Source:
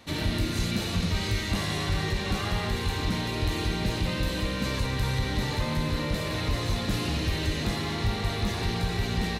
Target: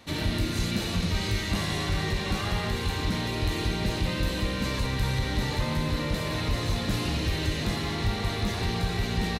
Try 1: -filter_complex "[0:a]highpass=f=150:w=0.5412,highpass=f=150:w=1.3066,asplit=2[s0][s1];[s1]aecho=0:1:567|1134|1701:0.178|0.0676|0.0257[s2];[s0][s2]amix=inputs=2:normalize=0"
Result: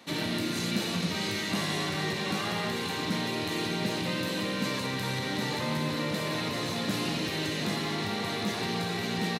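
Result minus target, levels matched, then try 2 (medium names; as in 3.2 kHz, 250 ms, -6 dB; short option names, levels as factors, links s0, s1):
125 Hz band -5.5 dB
-filter_complex "[0:a]asplit=2[s0][s1];[s1]aecho=0:1:567|1134|1701:0.178|0.0676|0.0257[s2];[s0][s2]amix=inputs=2:normalize=0"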